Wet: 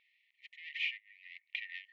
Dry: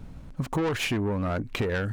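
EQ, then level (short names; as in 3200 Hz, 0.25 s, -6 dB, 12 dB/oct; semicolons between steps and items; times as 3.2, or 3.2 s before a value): brick-wall FIR high-pass 1800 Hz; LPF 3000 Hz 24 dB/oct; -3.0 dB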